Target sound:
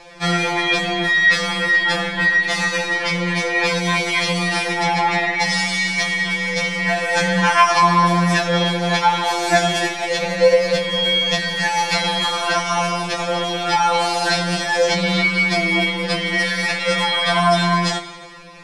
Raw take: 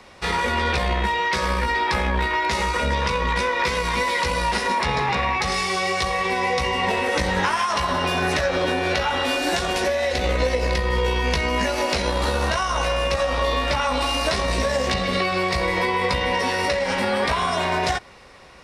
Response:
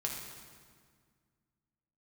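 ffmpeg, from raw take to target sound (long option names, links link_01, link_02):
-filter_complex "[0:a]aeval=exprs='0.422*(cos(1*acos(clip(val(0)/0.422,-1,1)))-cos(1*PI/2))+0.0299*(cos(2*acos(clip(val(0)/0.422,-1,1)))-cos(2*PI/2))+0.0237*(cos(4*acos(clip(val(0)/0.422,-1,1)))-cos(4*PI/2))+0.0106*(cos(6*acos(clip(val(0)/0.422,-1,1)))-cos(6*PI/2))':channel_layout=same,lowpass=10000,asplit=2[link_01][link_02];[1:a]atrim=start_sample=2205,adelay=7[link_03];[link_02][link_03]afir=irnorm=-1:irlink=0,volume=-9dB[link_04];[link_01][link_04]amix=inputs=2:normalize=0,afftfilt=real='re*2.83*eq(mod(b,8),0)':imag='im*2.83*eq(mod(b,8),0)':win_size=2048:overlap=0.75,volume=7dB"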